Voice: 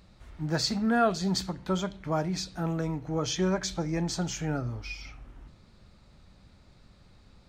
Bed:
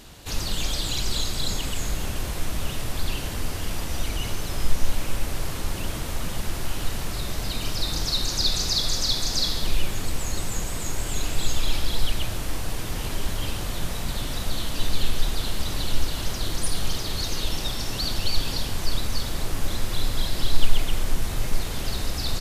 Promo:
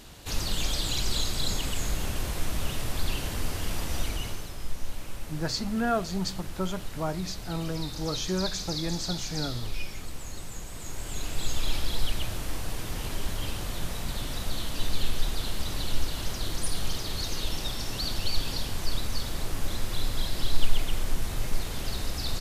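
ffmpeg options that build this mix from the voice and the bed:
-filter_complex "[0:a]adelay=4900,volume=-2.5dB[a];[1:a]volume=5dB,afade=t=out:st=3.99:d=0.55:silence=0.354813,afade=t=in:st=10.68:d=1:silence=0.446684[b];[a][b]amix=inputs=2:normalize=0"

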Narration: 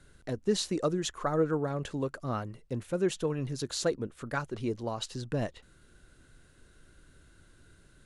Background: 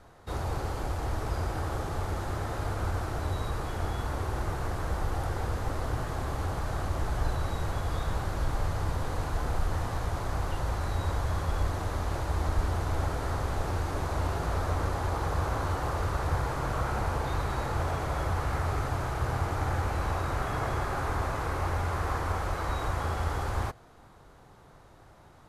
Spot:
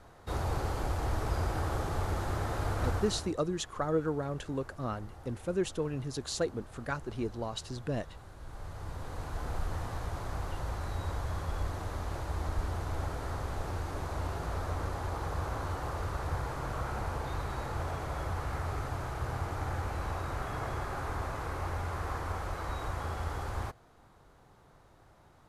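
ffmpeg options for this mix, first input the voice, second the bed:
-filter_complex "[0:a]adelay=2550,volume=-2.5dB[a];[1:a]volume=12.5dB,afade=t=out:st=2.91:d=0.43:silence=0.125893,afade=t=in:st=8.39:d=1.17:silence=0.223872[b];[a][b]amix=inputs=2:normalize=0"

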